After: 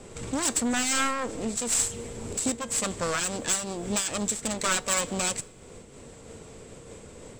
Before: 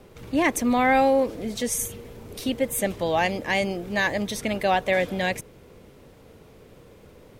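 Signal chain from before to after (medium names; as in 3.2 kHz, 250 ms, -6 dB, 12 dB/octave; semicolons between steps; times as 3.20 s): self-modulated delay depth 0.9 ms; feedback comb 230 Hz, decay 0.17 s, harmonics all, mix 40%; in parallel at -8 dB: hard clipper -26 dBFS, distortion -10 dB; on the sum: resonant low-pass 7.8 kHz, resonance Q 11; compression 1.5:1, threshold -39 dBFS, peak gain reduction 9 dB; saturation -20.5 dBFS, distortion -17 dB; on a send at -23 dB: reverberation RT60 2.6 s, pre-delay 30 ms; on the sum: random flutter of the level, depth 65%; trim +7 dB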